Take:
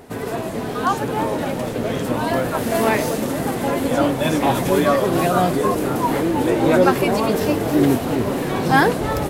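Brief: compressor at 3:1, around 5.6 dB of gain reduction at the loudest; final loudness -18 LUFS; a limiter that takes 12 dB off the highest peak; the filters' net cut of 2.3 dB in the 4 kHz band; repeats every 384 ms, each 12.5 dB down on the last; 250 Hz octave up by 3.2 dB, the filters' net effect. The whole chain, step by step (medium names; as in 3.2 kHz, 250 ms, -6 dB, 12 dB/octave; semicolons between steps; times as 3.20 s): peaking EQ 250 Hz +4 dB; peaking EQ 4 kHz -3 dB; compression 3:1, threshold -16 dBFS; peak limiter -18 dBFS; feedback delay 384 ms, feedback 24%, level -12.5 dB; trim +8 dB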